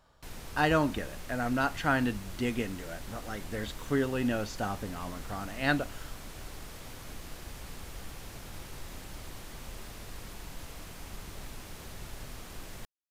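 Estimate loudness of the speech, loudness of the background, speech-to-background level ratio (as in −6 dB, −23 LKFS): −32.0 LKFS, −45.5 LKFS, 13.5 dB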